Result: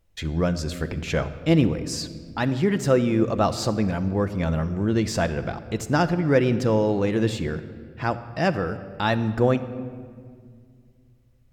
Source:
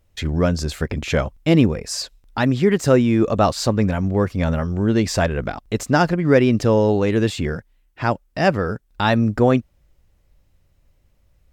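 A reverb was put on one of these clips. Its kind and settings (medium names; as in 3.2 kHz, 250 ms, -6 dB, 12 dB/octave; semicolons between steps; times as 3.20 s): simulated room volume 3900 m³, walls mixed, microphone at 0.73 m; trim -5 dB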